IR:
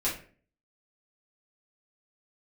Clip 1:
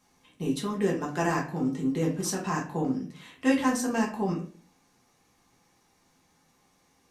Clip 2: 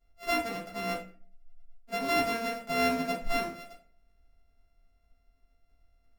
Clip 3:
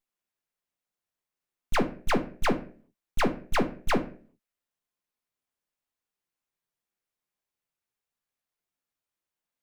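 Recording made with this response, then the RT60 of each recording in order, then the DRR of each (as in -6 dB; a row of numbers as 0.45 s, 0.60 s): 2; 0.45 s, 0.45 s, 0.45 s; -3.0 dB, -7.5 dB, 5.5 dB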